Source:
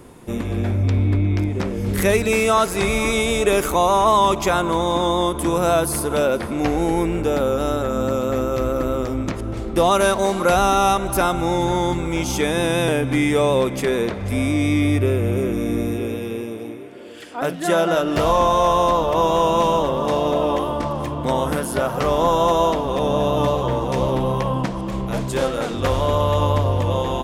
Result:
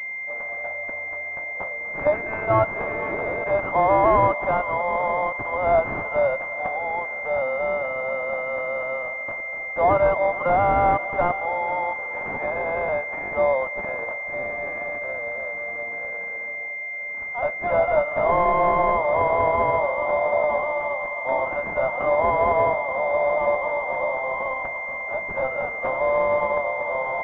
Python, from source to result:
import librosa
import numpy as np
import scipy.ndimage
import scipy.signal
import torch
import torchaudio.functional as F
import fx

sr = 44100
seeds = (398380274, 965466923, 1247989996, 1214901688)

y = scipy.signal.sosfilt(scipy.signal.ellip(4, 1.0, 40, 580.0, 'highpass', fs=sr, output='sos'), x)
y = np.clip(y, -10.0 ** (-9.5 / 20.0), 10.0 ** (-9.5 / 20.0))
y = fx.pwm(y, sr, carrier_hz=2100.0)
y = y * librosa.db_to_amplitude(2.5)